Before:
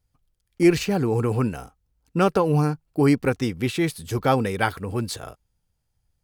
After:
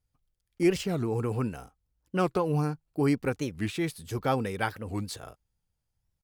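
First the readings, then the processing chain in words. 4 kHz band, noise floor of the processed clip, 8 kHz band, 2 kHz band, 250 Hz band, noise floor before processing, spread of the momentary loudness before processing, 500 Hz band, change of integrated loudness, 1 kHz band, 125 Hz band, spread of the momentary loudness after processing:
-7.0 dB, -82 dBFS, -6.5 dB, -7.0 dB, -7.0 dB, -75 dBFS, 10 LU, -7.0 dB, -7.0 dB, -7.0 dB, -7.0 dB, 9 LU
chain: warped record 45 rpm, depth 250 cents; trim -7 dB

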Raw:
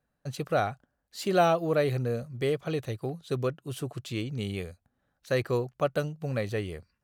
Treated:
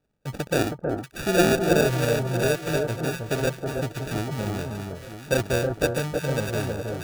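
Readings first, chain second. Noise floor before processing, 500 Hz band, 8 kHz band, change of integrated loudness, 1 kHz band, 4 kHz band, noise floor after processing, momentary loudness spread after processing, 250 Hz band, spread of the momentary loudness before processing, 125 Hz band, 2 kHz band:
-79 dBFS, +4.5 dB, +13.0 dB, +5.0 dB, +1.0 dB, +7.5 dB, -49 dBFS, 10 LU, +7.0 dB, 13 LU, +5.5 dB, +8.5 dB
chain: sample-and-hold 42×; echo whose repeats swap between lows and highs 319 ms, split 1.3 kHz, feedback 65%, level -3.5 dB; trim +3.5 dB

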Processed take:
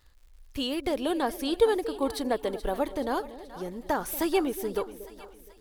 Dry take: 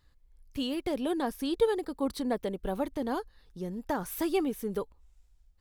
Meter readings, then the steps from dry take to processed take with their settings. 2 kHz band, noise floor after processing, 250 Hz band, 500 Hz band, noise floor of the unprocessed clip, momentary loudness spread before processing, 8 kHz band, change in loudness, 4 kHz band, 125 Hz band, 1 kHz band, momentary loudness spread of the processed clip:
+5.0 dB, -55 dBFS, +1.0 dB, +3.5 dB, -64 dBFS, 10 LU, +5.0 dB, +3.0 dB, +5.0 dB, -2.0 dB, +5.0 dB, 14 LU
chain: peaking EQ 180 Hz -9.5 dB 1.2 oct; crackle 150 per s -57 dBFS; two-band feedback delay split 690 Hz, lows 234 ms, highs 428 ms, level -14 dB; trim +5 dB

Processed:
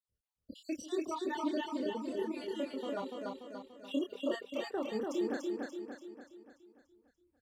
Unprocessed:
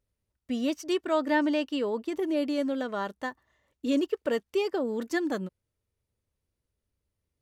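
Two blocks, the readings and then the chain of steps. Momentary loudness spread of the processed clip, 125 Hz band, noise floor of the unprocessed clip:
14 LU, no reading, -85 dBFS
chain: random holes in the spectrogram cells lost 67%; chorus voices 2, 0.29 Hz, delay 27 ms, depth 1.2 ms; on a send: feedback delay 290 ms, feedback 50%, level -3 dB; on the sum: trim -2 dB

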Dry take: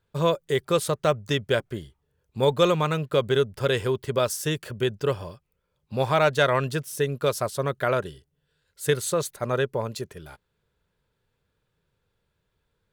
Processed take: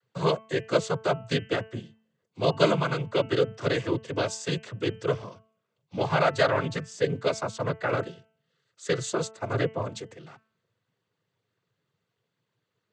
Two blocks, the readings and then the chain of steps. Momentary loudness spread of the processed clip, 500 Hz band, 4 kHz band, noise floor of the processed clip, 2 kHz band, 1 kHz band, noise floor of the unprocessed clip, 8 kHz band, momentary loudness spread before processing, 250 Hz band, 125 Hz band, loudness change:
11 LU, -3.0 dB, -3.0 dB, -81 dBFS, -1.5 dB, -2.5 dB, -76 dBFS, -5.5 dB, 12 LU, -1.0 dB, -2.5 dB, -2.5 dB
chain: noise-vocoded speech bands 16; de-hum 220.9 Hz, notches 14; trim -2 dB

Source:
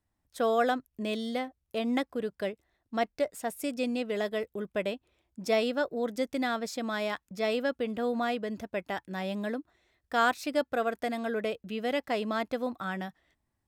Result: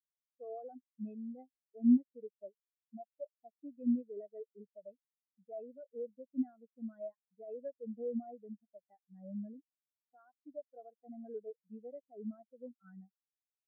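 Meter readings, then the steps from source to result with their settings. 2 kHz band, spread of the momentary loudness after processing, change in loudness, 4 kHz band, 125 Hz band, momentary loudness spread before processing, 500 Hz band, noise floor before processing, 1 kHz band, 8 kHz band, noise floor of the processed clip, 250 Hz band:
under -40 dB, 20 LU, -8.0 dB, under -40 dB, no reading, 9 LU, -15.5 dB, -81 dBFS, -24.5 dB, under -30 dB, under -85 dBFS, -3.5 dB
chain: bass shelf 61 Hz +10.5 dB; peak limiter -25 dBFS, peak gain reduction 11.5 dB; spectral contrast expander 4:1; trim +7 dB

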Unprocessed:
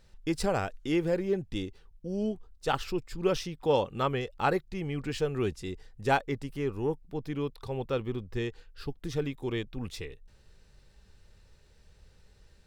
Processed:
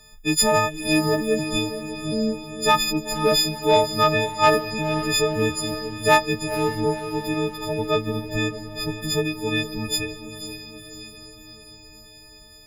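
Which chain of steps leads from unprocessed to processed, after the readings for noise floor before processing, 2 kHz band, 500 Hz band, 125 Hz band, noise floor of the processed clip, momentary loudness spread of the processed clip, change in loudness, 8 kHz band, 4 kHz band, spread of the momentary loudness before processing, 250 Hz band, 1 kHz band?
-60 dBFS, +12.5 dB, +8.0 dB, +6.0 dB, -47 dBFS, 15 LU, +10.0 dB, +20.0 dB, +17.0 dB, 11 LU, +8.0 dB, +11.0 dB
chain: partials quantised in pitch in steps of 6 st; saturation -13.5 dBFS, distortion -21 dB; echo that smears into a reverb 492 ms, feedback 57%, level -10 dB; trim +7 dB; Opus 128 kbps 48 kHz

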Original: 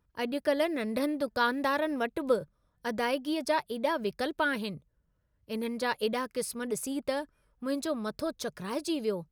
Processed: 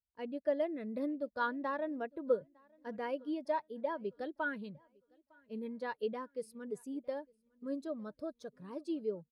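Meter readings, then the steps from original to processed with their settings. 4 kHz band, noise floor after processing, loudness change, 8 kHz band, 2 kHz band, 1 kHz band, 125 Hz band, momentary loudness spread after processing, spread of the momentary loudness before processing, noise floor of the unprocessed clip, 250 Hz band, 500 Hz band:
-18.5 dB, -82 dBFS, -7.5 dB, under -20 dB, -9.5 dB, -8.0 dB, -10.0 dB, 11 LU, 8 LU, -74 dBFS, -7.5 dB, -6.0 dB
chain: treble shelf 7.2 kHz -3.5 dB; on a send: feedback delay 906 ms, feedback 46%, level -19.5 dB; on the sum: spectral contrast expander 1.5:1; trim -6 dB

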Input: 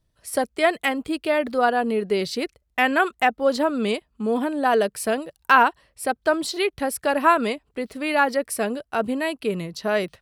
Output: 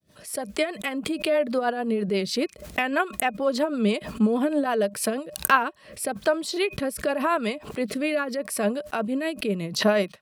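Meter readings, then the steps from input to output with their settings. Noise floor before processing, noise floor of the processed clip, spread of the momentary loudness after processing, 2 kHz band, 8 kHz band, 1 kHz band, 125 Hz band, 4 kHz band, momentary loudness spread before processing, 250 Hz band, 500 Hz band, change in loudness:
-71 dBFS, -50 dBFS, 7 LU, -4.5 dB, +1.0 dB, -6.5 dB, no reading, -1.0 dB, 9 LU, 0.0 dB, -2.0 dB, -3.0 dB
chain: fade-in on the opening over 1.00 s; recorder AGC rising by 14 dB/s; small resonant body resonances 200/600/1100/2500 Hz, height 7 dB, ringing for 85 ms; rotary cabinet horn 6.3 Hz, later 0.8 Hz, at 5.27 s; high-pass 150 Hz 12 dB/octave; tremolo 8.3 Hz, depth 41%; swell ahead of each attack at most 110 dB/s; trim -2.5 dB

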